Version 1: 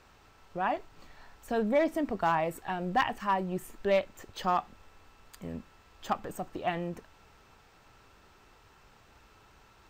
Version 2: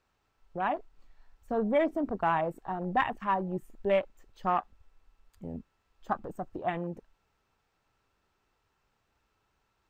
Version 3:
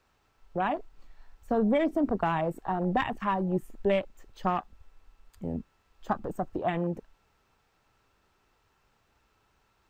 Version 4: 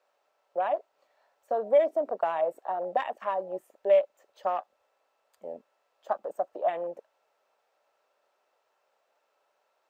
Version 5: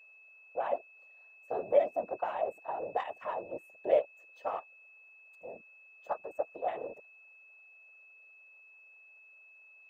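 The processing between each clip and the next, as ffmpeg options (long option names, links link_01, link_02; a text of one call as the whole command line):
ffmpeg -i in.wav -af "afwtdn=0.0141" out.wav
ffmpeg -i in.wav -filter_complex "[0:a]acrossover=split=320|3000[link_01][link_02][link_03];[link_02]acompressor=threshold=-32dB:ratio=6[link_04];[link_01][link_04][link_03]amix=inputs=3:normalize=0,volume=6dB" out.wav
ffmpeg -i in.wav -af "highpass=frequency=580:width_type=q:width=4.9,volume=-6.5dB" out.wav
ffmpeg -i in.wav -af "afftfilt=real='hypot(re,im)*cos(2*PI*random(0))':imag='hypot(re,im)*sin(2*PI*random(1))':win_size=512:overlap=0.75,aeval=exprs='val(0)+0.00178*sin(2*PI*2600*n/s)':channel_layout=same" out.wav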